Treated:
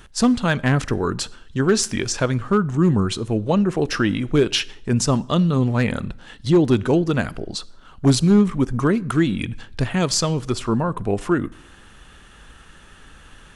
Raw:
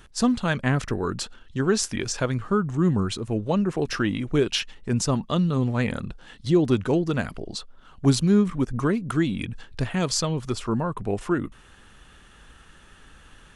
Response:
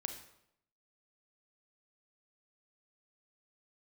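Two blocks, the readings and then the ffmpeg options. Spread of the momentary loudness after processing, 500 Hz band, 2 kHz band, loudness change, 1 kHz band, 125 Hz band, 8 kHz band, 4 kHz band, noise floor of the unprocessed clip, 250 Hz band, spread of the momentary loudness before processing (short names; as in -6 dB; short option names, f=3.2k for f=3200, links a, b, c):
10 LU, +4.5 dB, +4.5 dB, +4.5 dB, +4.5 dB, +4.5 dB, +4.5 dB, +4.5 dB, -51 dBFS, +4.5 dB, 11 LU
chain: -filter_complex "[0:a]asoftclip=type=hard:threshold=-13dB,asplit=2[a][b];[1:a]atrim=start_sample=2205[c];[b][c]afir=irnorm=-1:irlink=0,volume=-12.5dB[d];[a][d]amix=inputs=2:normalize=0,volume=3dB"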